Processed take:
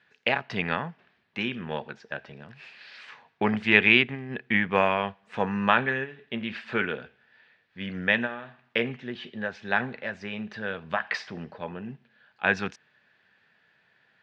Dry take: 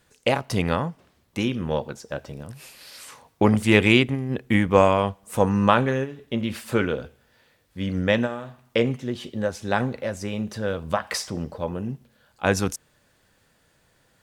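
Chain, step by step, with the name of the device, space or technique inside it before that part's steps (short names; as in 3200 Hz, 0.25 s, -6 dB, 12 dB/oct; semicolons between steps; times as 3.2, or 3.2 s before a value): kitchen radio (speaker cabinet 200–4000 Hz, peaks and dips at 300 Hz -10 dB, 530 Hz -8 dB, 1100 Hz -3 dB, 1700 Hz +9 dB, 2500 Hz +5 dB); gain -2.5 dB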